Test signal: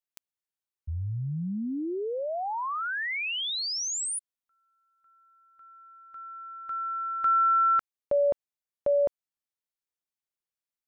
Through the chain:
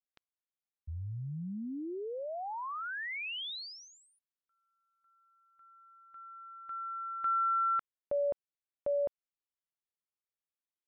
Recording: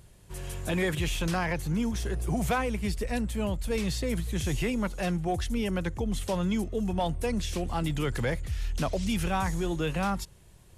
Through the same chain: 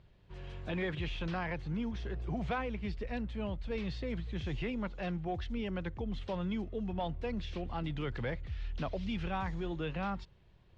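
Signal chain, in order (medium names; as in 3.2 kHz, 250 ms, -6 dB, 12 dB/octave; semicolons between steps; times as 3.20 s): low-pass 4 kHz 24 dB/octave; trim -7.5 dB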